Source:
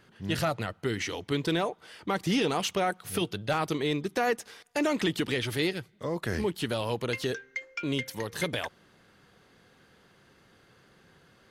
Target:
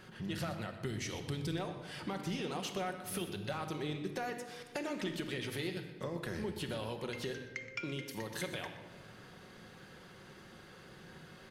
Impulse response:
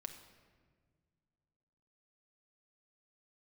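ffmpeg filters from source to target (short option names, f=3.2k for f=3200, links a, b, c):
-filter_complex "[0:a]asettb=1/sr,asplit=3[a][b][c];[a]atrim=end=0.854[d];[b]atrim=start=0.85:end=1.52,asetpts=PTS-STARTPTS,afade=t=in:d=0.004:c=qsin,afade=t=out:st=0.666:d=0.004:c=qsin,bass=f=250:g=10,treble=f=4k:g=8[e];[c]atrim=start=1.516[f];[d][e]acrossfade=d=0.004:c1=hsin:c2=qsin[g];[g][f]acrossfade=d=0.004:c1=qsin:c2=hsin,acompressor=threshold=-45dB:ratio=4,asplit=2[h][i];[i]adelay=122.4,volume=-13dB,highshelf=f=4k:g=-2.76[j];[h][j]amix=inputs=2:normalize=0[k];[1:a]atrim=start_sample=2205[l];[k][l]afir=irnorm=-1:irlink=0,volume=9dB"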